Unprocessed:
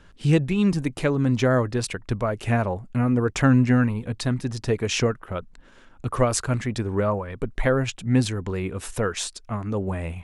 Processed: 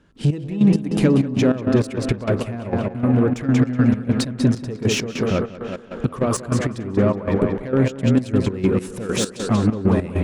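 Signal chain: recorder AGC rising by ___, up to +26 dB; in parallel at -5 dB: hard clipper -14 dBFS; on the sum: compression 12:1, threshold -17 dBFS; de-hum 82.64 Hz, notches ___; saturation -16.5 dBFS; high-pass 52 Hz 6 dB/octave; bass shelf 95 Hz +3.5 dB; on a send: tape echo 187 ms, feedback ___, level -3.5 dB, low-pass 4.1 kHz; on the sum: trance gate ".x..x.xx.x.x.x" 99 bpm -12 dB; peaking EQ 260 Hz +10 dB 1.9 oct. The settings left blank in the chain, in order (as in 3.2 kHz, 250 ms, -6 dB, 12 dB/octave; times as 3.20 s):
7.3 dB/s, 16, 75%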